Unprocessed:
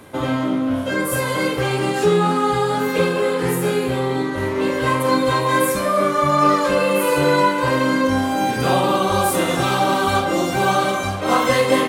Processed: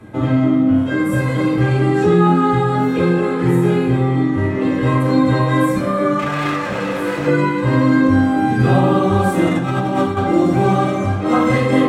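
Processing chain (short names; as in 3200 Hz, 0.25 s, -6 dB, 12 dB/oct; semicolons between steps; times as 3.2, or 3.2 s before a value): tilt -4 dB/oct; 6.19–7.27 hard clip -15.5 dBFS, distortion -15 dB; 9.47–10.17 negative-ratio compressor -16 dBFS, ratio -0.5; reverb, pre-delay 3 ms, DRR -1 dB; gain -1.5 dB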